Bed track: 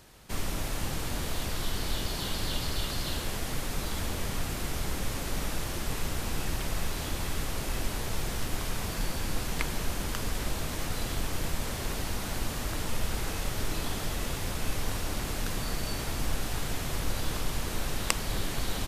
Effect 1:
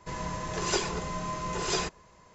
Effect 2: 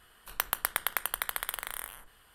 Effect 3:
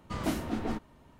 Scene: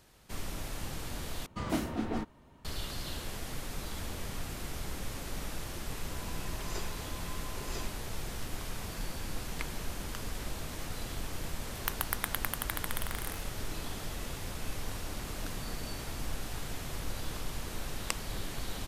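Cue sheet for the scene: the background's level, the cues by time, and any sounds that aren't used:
bed track -6.5 dB
1.46 replace with 3 -1 dB
6.02 add 1 -15 dB
11.48 add 2 -4 dB
15.16 add 3 -17.5 dB

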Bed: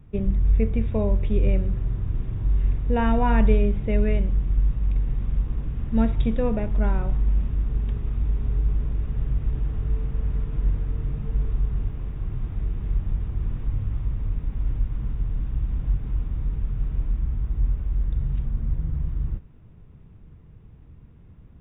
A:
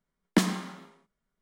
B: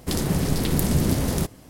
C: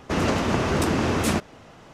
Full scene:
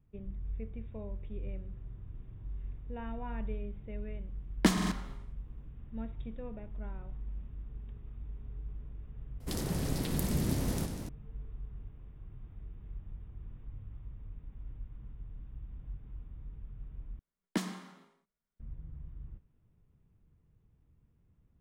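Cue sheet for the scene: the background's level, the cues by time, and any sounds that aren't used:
bed -19.5 dB
4.28 add A -2.5 dB + stuck buffer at 0.45, samples 2048, times 3
9.4 add B -11.5 dB + warbling echo 93 ms, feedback 80%, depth 184 cents, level -10 dB
17.19 replace with A -10.5 dB
not used: C

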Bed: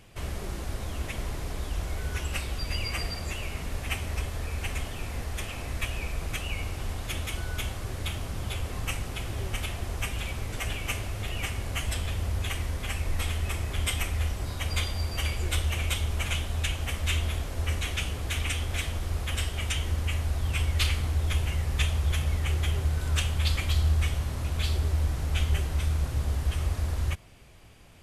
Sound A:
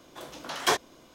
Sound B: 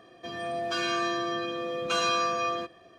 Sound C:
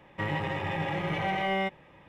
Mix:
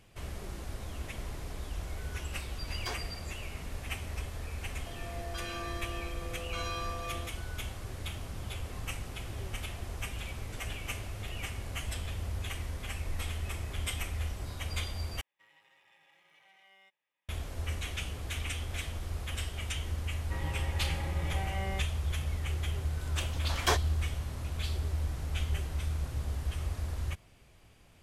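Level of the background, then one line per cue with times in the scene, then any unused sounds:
bed -6.5 dB
2.19 add A -16 dB
4.63 add B -12 dB
15.21 replace with C -17.5 dB + differentiator
20.12 add C -10.5 dB
23 add A -4 dB

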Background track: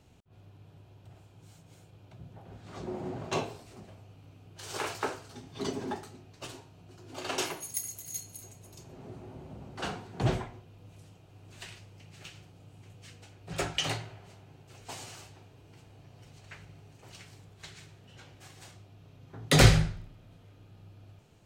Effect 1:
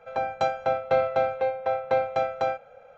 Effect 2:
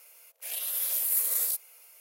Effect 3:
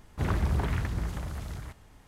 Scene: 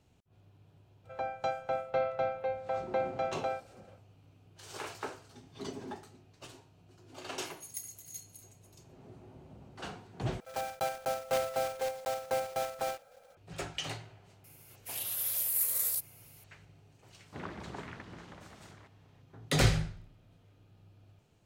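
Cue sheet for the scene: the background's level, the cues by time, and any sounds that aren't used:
background track -7 dB
1.03 add 1 -8.5 dB, fades 0.05 s
10.4 replace with 1 -9 dB + block floating point 3-bit
14.44 add 2 -3.5 dB
17.15 add 3 -8.5 dB + BPF 210–4900 Hz

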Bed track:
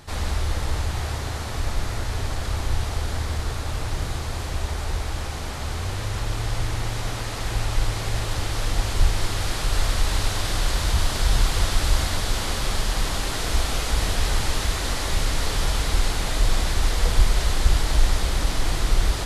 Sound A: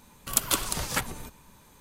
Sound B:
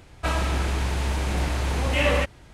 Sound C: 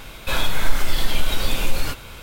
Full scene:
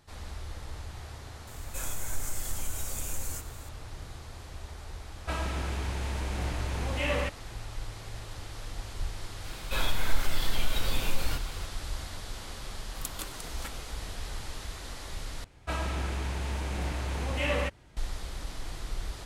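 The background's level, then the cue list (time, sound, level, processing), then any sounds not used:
bed track -15.5 dB
1.47 add C -17 dB + resonant high shelf 5300 Hz +11 dB, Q 3
5.04 add B -8 dB
9.44 add C -8 dB
12.68 add A -14.5 dB
15.44 replace with B -7.5 dB

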